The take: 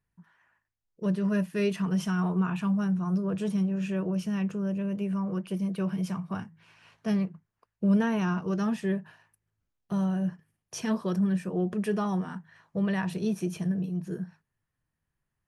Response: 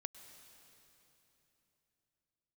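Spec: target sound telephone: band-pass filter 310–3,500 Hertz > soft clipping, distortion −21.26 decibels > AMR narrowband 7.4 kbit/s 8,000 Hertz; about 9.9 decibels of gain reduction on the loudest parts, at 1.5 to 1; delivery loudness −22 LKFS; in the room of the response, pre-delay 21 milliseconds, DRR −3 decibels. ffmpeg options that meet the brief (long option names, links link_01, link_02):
-filter_complex "[0:a]acompressor=threshold=-49dB:ratio=1.5,asplit=2[link_01][link_02];[1:a]atrim=start_sample=2205,adelay=21[link_03];[link_02][link_03]afir=irnorm=-1:irlink=0,volume=6.5dB[link_04];[link_01][link_04]amix=inputs=2:normalize=0,highpass=310,lowpass=3500,asoftclip=threshold=-28.5dB,volume=18.5dB" -ar 8000 -c:a libopencore_amrnb -b:a 7400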